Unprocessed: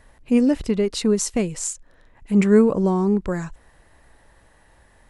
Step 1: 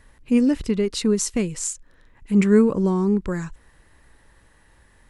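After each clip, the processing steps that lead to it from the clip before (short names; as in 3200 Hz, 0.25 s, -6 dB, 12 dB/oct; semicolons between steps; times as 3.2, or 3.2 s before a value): bell 680 Hz -8 dB 0.71 oct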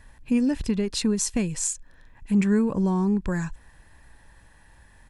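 compressor 2:1, threshold -21 dBFS, peak gain reduction 6.5 dB; comb 1.2 ms, depth 38%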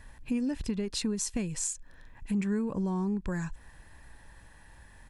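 compressor 2:1, threshold -34 dBFS, peak gain reduction 9.5 dB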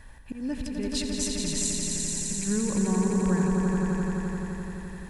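auto swell 0.192 s; on a send: swelling echo 86 ms, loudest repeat 5, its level -5 dB; on the sum: gain +2 dB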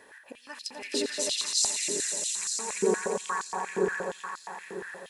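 stepped high-pass 8.5 Hz 400–4500 Hz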